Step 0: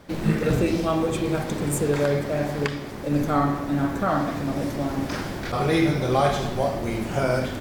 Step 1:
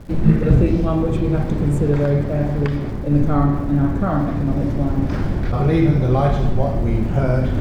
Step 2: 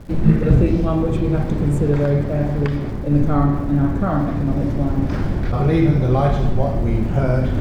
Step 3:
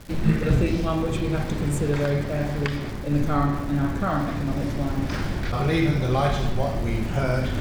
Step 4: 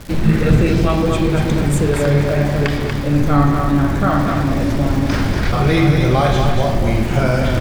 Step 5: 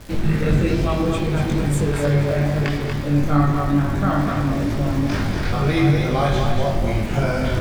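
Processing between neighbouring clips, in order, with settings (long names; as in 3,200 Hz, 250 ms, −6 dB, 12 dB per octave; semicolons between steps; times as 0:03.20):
reversed playback; upward compression, threshold −23 dBFS; reversed playback; RIAA equalisation playback; surface crackle 290 per second −40 dBFS; level −1 dB
no processing that can be heard
tilt shelving filter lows −7 dB, about 1,300 Hz
in parallel at −2 dB: brickwall limiter −17.5 dBFS, peak gain reduction 9 dB; on the sum: single-tap delay 238 ms −5.5 dB; level +3.5 dB
chorus effect 2.3 Hz, delay 19.5 ms, depth 2.3 ms; level −1.5 dB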